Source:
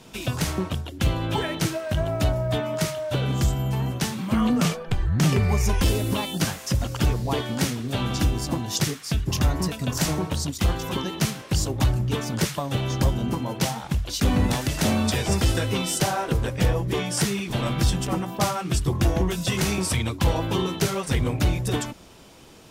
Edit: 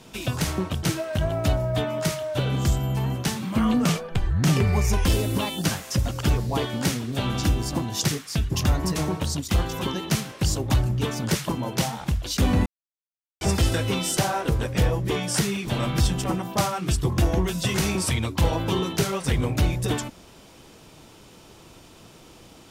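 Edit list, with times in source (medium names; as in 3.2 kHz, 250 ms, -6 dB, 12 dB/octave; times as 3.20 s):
0.83–1.59 s: delete
9.72–10.06 s: delete
12.59–13.32 s: delete
14.49–15.24 s: mute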